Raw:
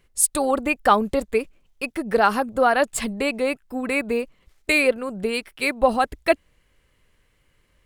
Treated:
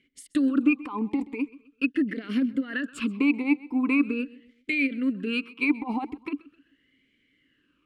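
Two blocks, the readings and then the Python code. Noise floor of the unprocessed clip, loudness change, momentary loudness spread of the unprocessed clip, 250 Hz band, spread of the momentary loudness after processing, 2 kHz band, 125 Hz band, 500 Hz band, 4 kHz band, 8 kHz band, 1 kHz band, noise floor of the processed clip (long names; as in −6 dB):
−65 dBFS, −5.0 dB, 10 LU, +3.5 dB, 10 LU, −5.5 dB, can't be measured, −17.0 dB, −9.0 dB, below −25 dB, −17.0 dB, −70 dBFS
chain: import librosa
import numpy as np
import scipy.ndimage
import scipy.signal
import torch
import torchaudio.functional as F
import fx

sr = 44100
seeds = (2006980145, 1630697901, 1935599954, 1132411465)

y = fx.over_compress(x, sr, threshold_db=-23.0, ratio=-1.0)
y = fx.echo_feedback(y, sr, ms=130, feedback_pct=37, wet_db=-20.5)
y = fx.vowel_sweep(y, sr, vowels='i-u', hz=0.42)
y = y * librosa.db_to_amplitude(8.5)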